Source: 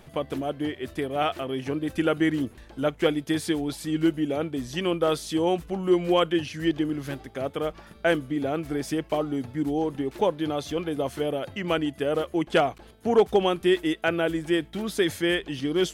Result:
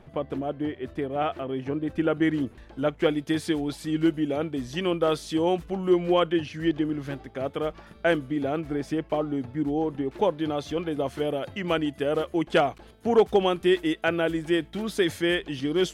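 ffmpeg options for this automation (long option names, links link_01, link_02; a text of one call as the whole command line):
ffmpeg -i in.wav -af "asetnsamples=nb_out_samples=441:pad=0,asendcmd='2.22 lowpass f 3200;3.1 lowpass f 5500;5.93 lowpass f 3000;7.41 lowpass f 4800;8.61 lowpass f 2200;10.19 lowpass f 4500;11.18 lowpass f 7900',lowpass=frequency=1400:poles=1" out.wav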